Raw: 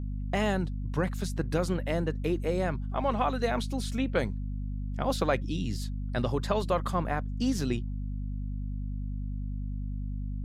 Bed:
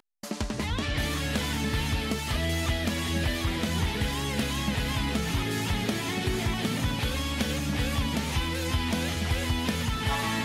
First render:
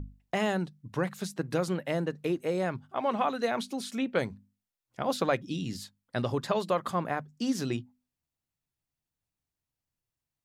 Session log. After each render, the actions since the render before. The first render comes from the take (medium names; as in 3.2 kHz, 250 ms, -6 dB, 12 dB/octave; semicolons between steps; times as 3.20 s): hum notches 50/100/150/200/250 Hz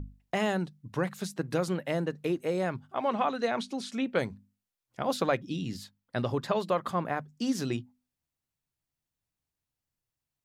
3.09–4.04 s: low-pass 7.6 kHz; 5.31–7.16 s: peaking EQ 8.8 kHz -4.5 dB 1.6 oct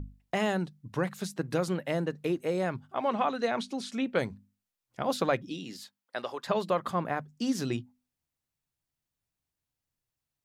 5.49–6.46 s: high-pass 260 Hz -> 690 Hz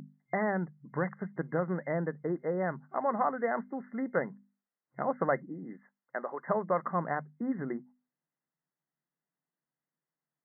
FFT band-pass 130–2100 Hz; dynamic bell 300 Hz, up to -4 dB, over -39 dBFS, Q 1.1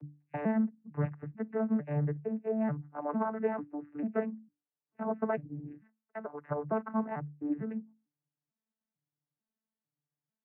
vocoder on a broken chord bare fifth, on D3, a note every 447 ms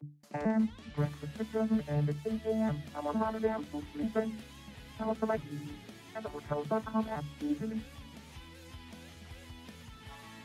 add bed -21.5 dB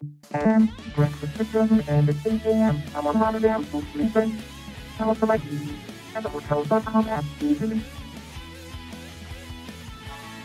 trim +11 dB